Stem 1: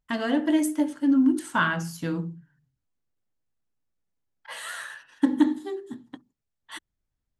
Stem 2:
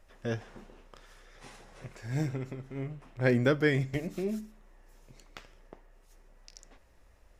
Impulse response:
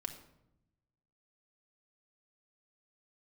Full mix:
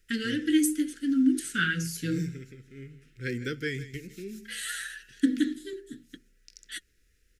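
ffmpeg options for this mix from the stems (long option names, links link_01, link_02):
-filter_complex "[0:a]flanger=delay=3.9:depth=2.9:regen=47:speed=0.76:shape=triangular,volume=0dB[link_01];[1:a]volume=-7.5dB,asplit=2[link_02][link_03];[link_03]volume=-16dB,aecho=0:1:158:1[link_04];[link_01][link_02][link_04]amix=inputs=3:normalize=0,asuperstop=centerf=820:order=12:qfactor=0.9,highshelf=frequency=2200:gain=9.5"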